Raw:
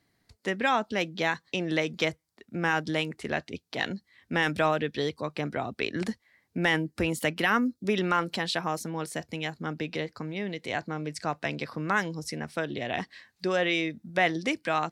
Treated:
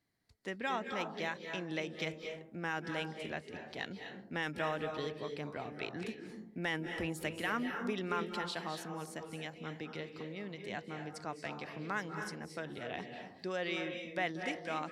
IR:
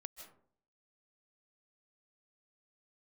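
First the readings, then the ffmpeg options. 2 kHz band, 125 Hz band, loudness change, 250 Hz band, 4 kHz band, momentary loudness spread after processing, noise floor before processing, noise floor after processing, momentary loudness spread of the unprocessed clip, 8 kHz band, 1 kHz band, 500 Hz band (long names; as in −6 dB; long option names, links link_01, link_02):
−10.0 dB, −10.0 dB, −10.0 dB, −10.0 dB, −10.0 dB, 8 LU, −75 dBFS, −55 dBFS, 9 LU, −10.0 dB, −10.0 dB, −9.5 dB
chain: -filter_complex "[1:a]atrim=start_sample=2205,asetrate=29988,aresample=44100[link_01];[0:a][link_01]afir=irnorm=-1:irlink=0,volume=-7dB"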